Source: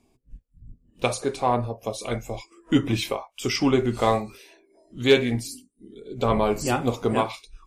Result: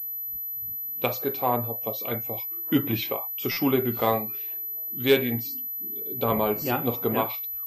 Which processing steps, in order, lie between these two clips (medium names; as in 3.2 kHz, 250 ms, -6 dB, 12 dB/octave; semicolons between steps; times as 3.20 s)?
high-pass 96 Hz 12 dB/octave; buffer glitch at 3.51 s, samples 256, times 9; class-D stage that switches slowly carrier 12 kHz; trim -2.5 dB